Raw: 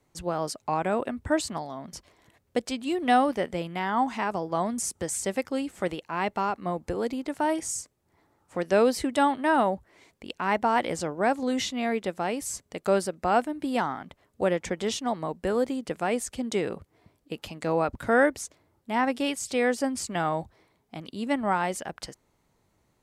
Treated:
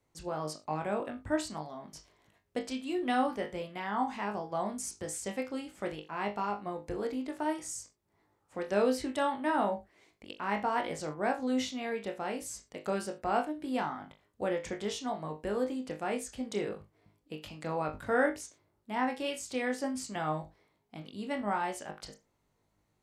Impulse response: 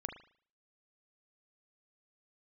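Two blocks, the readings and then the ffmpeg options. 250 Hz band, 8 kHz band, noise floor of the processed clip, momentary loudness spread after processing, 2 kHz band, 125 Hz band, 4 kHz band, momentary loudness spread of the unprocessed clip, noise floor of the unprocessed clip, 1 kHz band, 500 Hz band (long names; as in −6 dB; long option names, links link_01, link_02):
−6.5 dB, −8.0 dB, −76 dBFS, 14 LU, −6.5 dB, −6.5 dB, −6.5 dB, 14 LU, −70 dBFS, −7.0 dB, −6.5 dB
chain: -filter_complex "[1:a]atrim=start_sample=2205,afade=type=out:start_time=0.28:duration=0.01,atrim=end_sample=12789,asetrate=83790,aresample=44100[link_01];[0:a][link_01]afir=irnorm=-1:irlink=0"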